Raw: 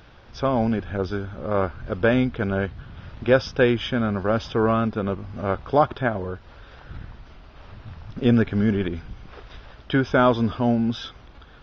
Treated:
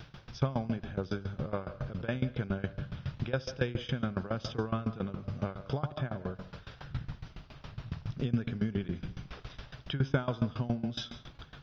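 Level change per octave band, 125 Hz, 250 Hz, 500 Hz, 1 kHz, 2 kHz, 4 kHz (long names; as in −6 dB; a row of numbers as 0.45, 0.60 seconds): −6.0, −12.5, −15.5, −16.0, −14.0, −8.5 decibels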